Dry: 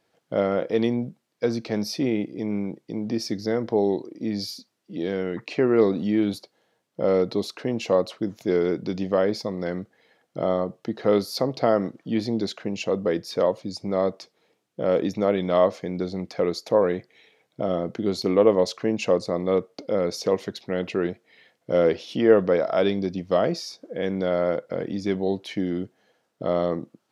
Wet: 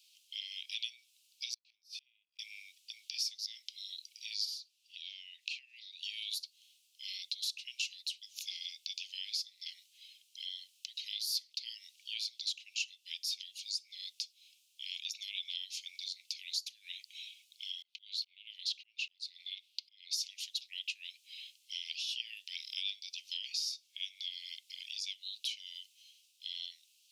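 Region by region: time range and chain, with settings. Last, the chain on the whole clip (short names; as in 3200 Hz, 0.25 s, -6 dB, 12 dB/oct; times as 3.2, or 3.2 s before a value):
1.54–2.39 tone controls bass +7 dB, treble -7 dB + flipped gate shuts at -22 dBFS, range -37 dB
4.45–6.03 high shelf 5300 Hz -9.5 dB + compressor 2:1, threshold -36 dBFS
17.82–20.13 resonant high shelf 5200 Hz -9 dB, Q 1.5 + compressor 2:1, threshold -26 dBFS + auto swell 0.395 s
whole clip: steep high-pass 2600 Hz 72 dB/oct; compressor 2.5:1, threshold -53 dBFS; gain +12.5 dB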